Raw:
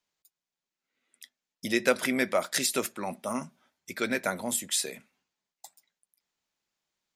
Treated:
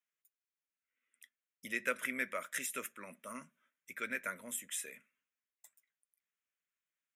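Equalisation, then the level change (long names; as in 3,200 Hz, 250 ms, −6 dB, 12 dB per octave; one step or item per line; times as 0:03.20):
bass and treble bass −15 dB, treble −2 dB
parametric band 360 Hz −8 dB 0.45 octaves
phaser with its sweep stopped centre 1,900 Hz, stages 4
−5.5 dB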